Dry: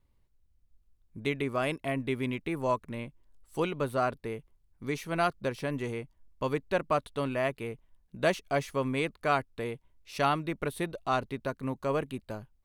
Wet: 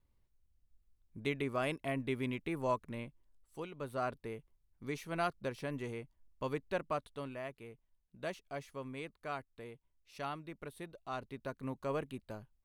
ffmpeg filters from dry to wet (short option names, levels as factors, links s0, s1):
-af "volume=3.35,afade=t=out:st=2.99:d=0.69:silence=0.298538,afade=t=in:st=3.68:d=0.42:silence=0.375837,afade=t=out:st=6.67:d=0.77:silence=0.446684,afade=t=in:st=11.05:d=0.59:silence=0.446684"